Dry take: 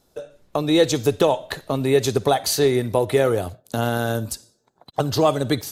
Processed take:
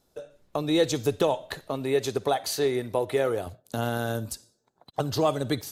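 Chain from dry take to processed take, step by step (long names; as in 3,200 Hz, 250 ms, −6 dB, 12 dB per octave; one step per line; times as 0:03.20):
0:01.68–0:03.47: bass and treble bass −6 dB, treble −3 dB
level −6 dB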